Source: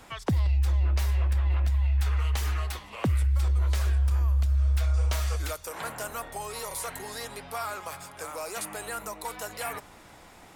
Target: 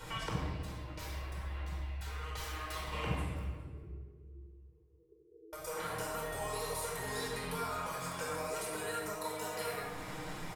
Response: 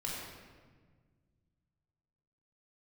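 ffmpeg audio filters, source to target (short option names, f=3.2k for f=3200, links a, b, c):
-filter_complex "[0:a]aecho=1:1:6.5:0.54,acompressor=threshold=-42dB:ratio=6,asettb=1/sr,asplit=3[a][b][c];[a]atrim=end=3.394[d];[b]atrim=start=3.39:end=5.53,asetpts=PTS-STARTPTS,afade=t=in:d=0.004:c=qsin,afade=t=out:st=2.136:d=0.004:c=qsin,asuperpass=centerf=380:order=12:qfactor=3.1[e];[c]atrim=start=5.526[f];[d][e]acrossfade=d=0.004:c1=hsin:c2=qsin[g];[g][f]acrossfade=d=0.004:c1=qsin:c2=hsin,aecho=1:1:410:0.0794[h];[1:a]atrim=start_sample=2205[i];[h][i]afir=irnorm=-1:irlink=0,volume=3.5dB"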